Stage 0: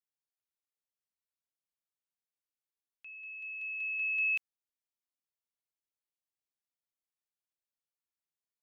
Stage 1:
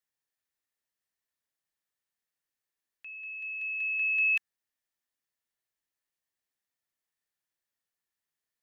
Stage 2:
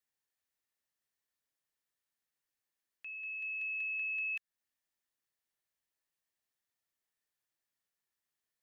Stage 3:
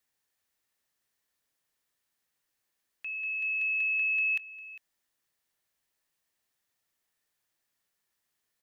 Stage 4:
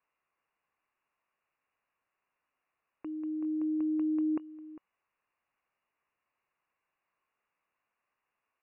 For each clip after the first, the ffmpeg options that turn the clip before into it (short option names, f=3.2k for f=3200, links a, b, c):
-af "equalizer=f=1.8k:t=o:w=0.23:g=9.5,volume=4dB"
-af "acompressor=threshold=-35dB:ratio=6,volume=-1dB"
-af "aecho=1:1:402:0.141,volume=8dB"
-af "lowpass=f=2.5k:t=q:w=0.5098,lowpass=f=2.5k:t=q:w=0.6013,lowpass=f=2.5k:t=q:w=0.9,lowpass=f=2.5k:t=q:w=2.563,afreqshift=-2900,volume=3dB"